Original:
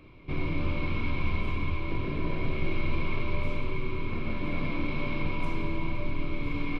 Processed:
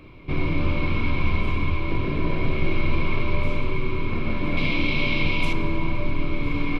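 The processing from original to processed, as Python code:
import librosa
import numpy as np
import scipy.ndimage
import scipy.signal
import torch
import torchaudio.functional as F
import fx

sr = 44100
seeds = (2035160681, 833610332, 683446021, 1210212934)

y = fx.high_shelf_res(x, sr, hz=2100.0, db=8.0, q=1.5, at=(4.57, 5.53))
y = F.gain(torch.from_numpy(y), 6.5).numpy()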